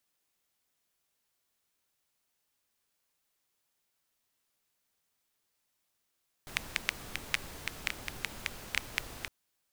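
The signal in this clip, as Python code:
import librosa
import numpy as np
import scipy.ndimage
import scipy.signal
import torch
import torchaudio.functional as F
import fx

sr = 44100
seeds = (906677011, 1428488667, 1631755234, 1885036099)

y = fx.rain(sr, seeds[0], length_s=2.81, drops_per_s=5.6, hz=2200.0, bed_db=-5.5)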